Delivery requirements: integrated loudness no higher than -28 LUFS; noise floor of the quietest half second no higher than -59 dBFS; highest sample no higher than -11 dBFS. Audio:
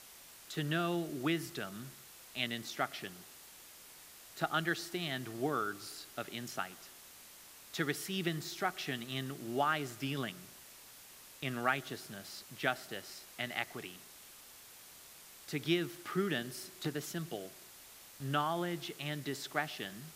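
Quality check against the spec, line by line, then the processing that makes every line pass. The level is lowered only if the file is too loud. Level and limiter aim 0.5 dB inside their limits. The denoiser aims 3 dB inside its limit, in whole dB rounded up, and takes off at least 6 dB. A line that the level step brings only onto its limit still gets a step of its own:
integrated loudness -38.0 LUFS: pass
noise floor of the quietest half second -55 dBFS: fail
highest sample -15.0 dBFS: pass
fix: noise reduction 7 dB, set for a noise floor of -55 dBFS

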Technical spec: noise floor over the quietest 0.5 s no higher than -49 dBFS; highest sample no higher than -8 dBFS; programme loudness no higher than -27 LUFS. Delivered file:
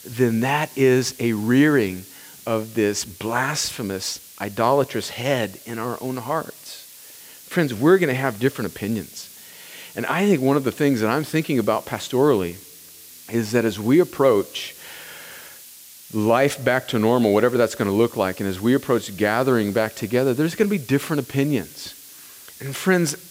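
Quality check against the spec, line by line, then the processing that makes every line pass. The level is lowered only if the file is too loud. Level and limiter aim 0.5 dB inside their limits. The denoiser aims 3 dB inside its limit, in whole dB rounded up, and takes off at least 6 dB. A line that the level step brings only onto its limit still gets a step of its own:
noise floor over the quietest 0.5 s -44 dBFS: fail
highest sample -5.0 dBFS: fail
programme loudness -21.0 LUFS: fail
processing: trim -6.5 dB

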